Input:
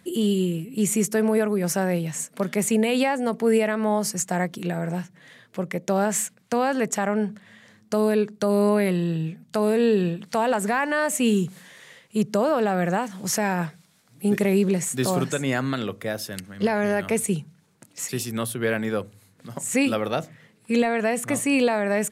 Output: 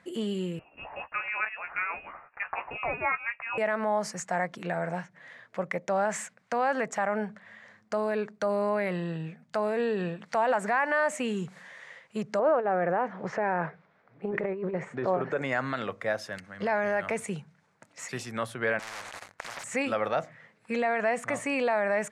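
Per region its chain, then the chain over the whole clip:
0.59–3.58 HPF 970 Hz + doubler 14 ms -7 dB + inverted band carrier 3000 Hz
12.39–15.42 LPF 2000 Hz + bell 410 Hz +9 dB 0.74 oct + negative-ratio compressor -18 dBFS, ratio -0.5
18.79–19.64 sample leveller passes 5 + spectral compressor 10:1
whole clip: limiter -15.5 dBFS; Chebyshev low-pass 6300 Hz, order 2; band shelf 1100 Hz +10.5 dB 2.4 oct; gain -8 dB

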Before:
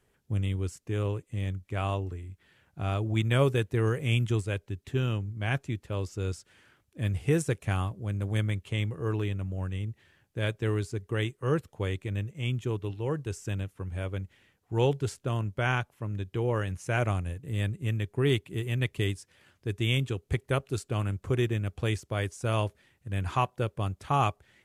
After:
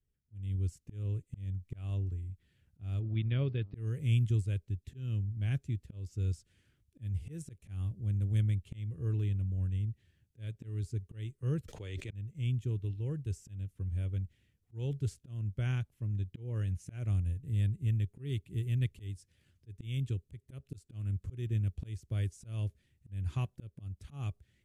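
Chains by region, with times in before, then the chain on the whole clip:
2.99–3.74 elliptic low-pass 4700 Hz + low shelf 79 Hz -9 dB + buzz 100 Hz, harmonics 13, -52 dBFS -5 dB/oct
11.68–12.13 three-band isolator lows -14 dB, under 380 Hz, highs -15 dB, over 7500 Hz + fast leveller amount 100%
whole clip: passive tone stack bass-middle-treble 10-0-1; auto swell 0.256 s; AGC gain up to 11 dB

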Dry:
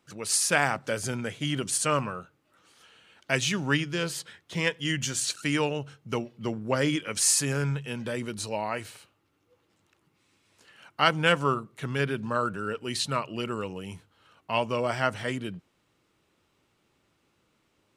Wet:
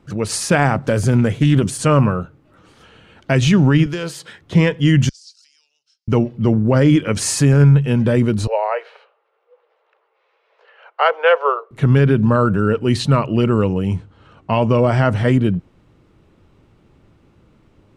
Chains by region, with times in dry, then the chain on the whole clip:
0.87–1.79 high shelf 9600 Hz +11 dB + compressor 2.5:1, threshold -27 dBFS + Doppler distortion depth 0.12 ms
3.86–4.41 HPF 460 Hz 6 dB/oct + high shelf 4100 Hz +6.5 dB + compressor 3:1, threshold -34 dBFS
5.09–6.08 compressor, threshold -37 dBFS + ladder band-pass 5300 Hz, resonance 80%
8.47–11.71 steep high-pass 440 Hz 72 dB/oct + air absorption 290 m
13.87–15.05 steep low-pass 9400 Hz 96 dB/oct + short-mantissa float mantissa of 8-bit
whole clip: tilt -3.5 dB/oct; maximiser +15 dB; gain -3.5 dB

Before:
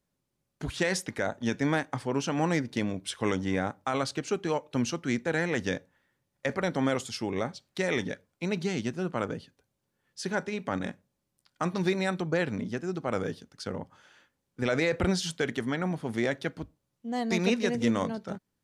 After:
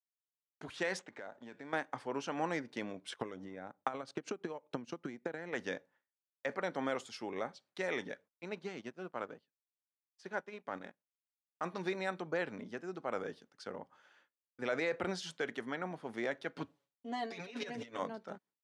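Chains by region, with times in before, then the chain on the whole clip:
0.99–1.73 median filter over 9 samples + elliptic low-pass 8000 Hz + compressor 5:1, threshold -35 dBFS
3.12–5.53 low shelf 500 Hz +8 dB + compressor 12:1, threshold -31 dBFS + transient shaper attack +10 dB, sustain -12 dB
8.28–11.64 G.711 law mismatch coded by A + high shelf 9800 Hz -10.5 dB + upward expander, over -47 dBFS
16.56–17.99 negative-ratio compressor -32 dBFS, ratio -0.5 + bell 3400 Hz +5.5 dB 1.5 oct + comb 7.1 ms, depth 96%
whole clip: weighting filter A; expander -57 dBFS; high shelf 2100 Hz -10 dB; gain -3.5 dB

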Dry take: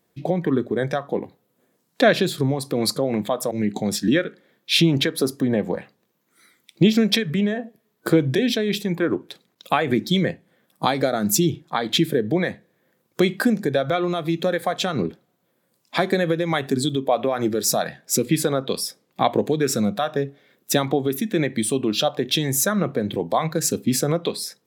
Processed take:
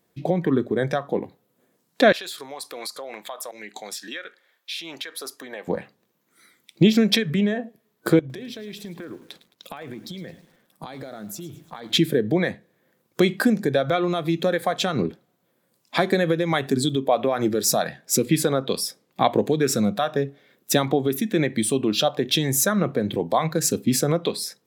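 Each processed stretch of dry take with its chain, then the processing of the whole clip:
2.12–5.68 HPF 920 Hz + compressor, threshold -29 dBFS
8.19–11.91 compressor 8:1, threshold -33 dBFS + lo-fi delay 0.108 s, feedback 55%, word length 8-bit, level -15 dB
whole clip: dry

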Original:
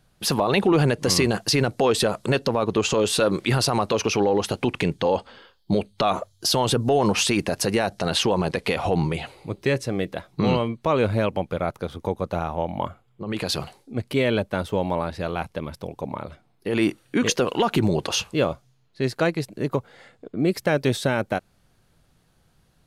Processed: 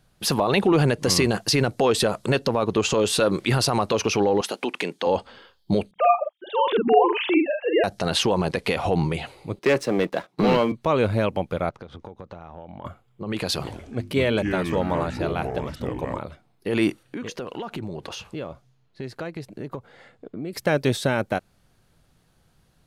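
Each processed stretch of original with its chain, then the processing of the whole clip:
4.41–5.07 HPF 210 Hz 24 dB/oct + low shelf 340 Hz -7.5 dB
5.91–7.84 sine-wave speech + doubler 47 ms -4 dB
9.59–10.72 Bessel high-pass 240 Hz, order 6 + high shelf 3900 Hz -9 dB + sample leveller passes 2
11.69–12.85 compressor 10:1, threshold -34 dBFS + air absorption 110 m
13.56–16.19 notches 50/100/150/200/250/300/350 Hz + echoes that change speed 83 ms, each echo -5 st, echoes 2, each echo -6 dB
17.03–20.53 compressor 4:1, threshold -30 dBFS + hard clip -23 dBFS + high shelf 4300 Hz -7.5 dB
whole clip: dry

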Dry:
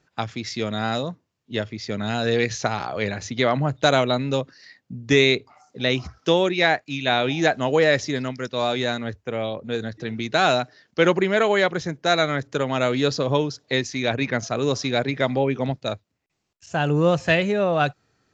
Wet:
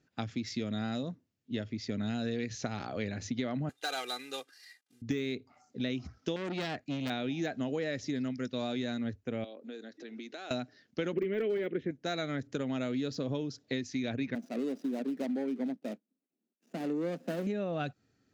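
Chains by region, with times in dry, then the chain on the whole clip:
3.69–5.02 CVSD 64 kbps + HPF 920 Hz + comb 2.5 ms, depth 79%
6.36–7.1 low shelf 310 Hz +7.5 dB + core saturation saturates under 2600 Hz
9.44–10.51 HPF 290 Hz 24 dB/oct + compressor 2.5:1, threshold -39 dBFS
11.13–11.91 EQ curve 120 Hz 0 dB, 410 Hz +15 dB, 840 Hz -7 dB, 2100 Hz +10 dB, 3300 Hz +5 dB, 4800 Hz -21 dB + de-esser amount 65% + overloaded stage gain 3.5 dB
14.35–17.47 median filter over 41 samples + steep high-pass 190 Hz 48 dB/oct
whole clip: de-esser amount 55%; fifteen-band EQ 100 Hz +4 dB, 250 Hz +10 dB, 1000 Hz -7 dB; compressor, threshold -22 dBFS; gain -8.5 dB

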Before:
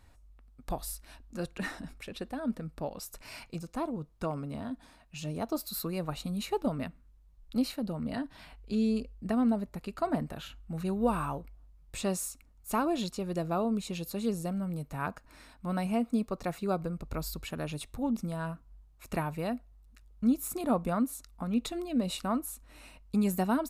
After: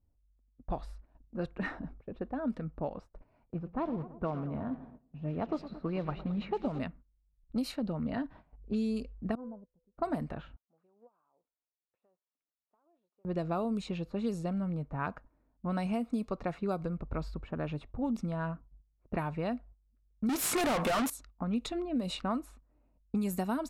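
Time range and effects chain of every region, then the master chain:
3.49–6.79 block floating point 5-bit + LPF 3200 Hz + warbling echo 0.111 s, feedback 68%, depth 111 cents, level -15.5 dB
9.35–9.98 LPF 1100 Hz 24 dB/oct + resonator 500 Hz, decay 0.41 s, mix 90%
10.56–13.25 HPF 890 Hz + compressor 12:1, threshold -47 dBFS
20.29–21.1 HPF 360 Hz 6 dB/oct + high shelf 8600 Hz -5.5 dB + overdrive pedal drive 39 dB, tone 5100 Hz, clips at -17.5 dBFS
whole clip: low-pass opened by the level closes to 410 Hz, open at -25 dBFS; gate -51 dBFS, range -15 dB; compressor, threshold -30 dBFS; gain +1.5 dB

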